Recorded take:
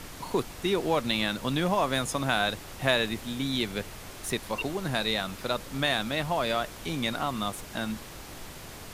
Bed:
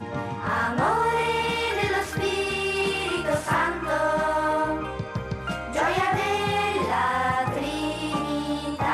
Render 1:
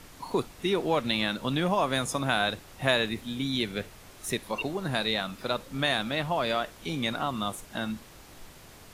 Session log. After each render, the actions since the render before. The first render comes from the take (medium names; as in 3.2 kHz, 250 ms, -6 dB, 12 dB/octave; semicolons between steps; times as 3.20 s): noise print and reduce 7 dB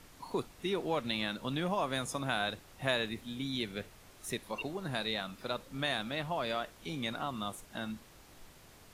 trim -7 dB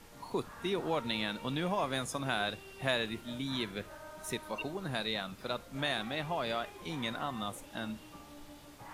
add bed -26 dB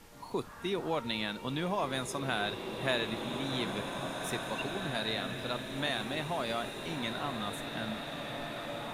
swelling reverb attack 2400 ms, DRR 3.5 dB